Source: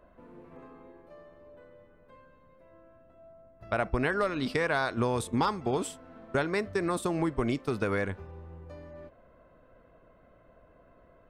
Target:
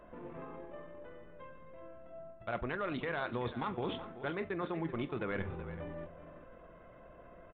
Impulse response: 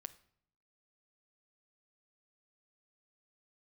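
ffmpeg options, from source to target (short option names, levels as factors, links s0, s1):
-filter_complex "[0:a]aresample=8000,aeval=exprs='clip(val(0),-1,0.075)':c=same,aresample=44100,lowshelf=f=430:g=-2.5[s0];[1:a]atrim=start_sample=2205,afade=t=out:st=0.31:d=0.01,atrim=end_sample=14112,asetrate=52920,aresample=44100[s1];[s0][s1]afir=irnorm=-1:irlink=0,areverse,acompressor=threshold=0.00447:ratio=5,areverse,aecho=1:1:567:0.237,atempo=1.5,volume=3.98"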